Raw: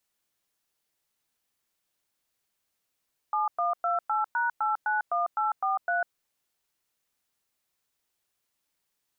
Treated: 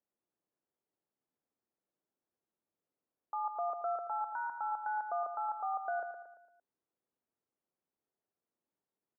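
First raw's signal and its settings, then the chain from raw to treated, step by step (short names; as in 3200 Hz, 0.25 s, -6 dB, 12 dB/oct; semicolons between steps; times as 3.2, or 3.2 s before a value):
DTMF "7128#891843", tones 0.149 s, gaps 0.106 s, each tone -26.5 dBFS
band-pass 350 Hz, Q 0.86; air absorption 440 m; on a send: feedback echo 0.114 s, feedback 47%, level -7.5 dB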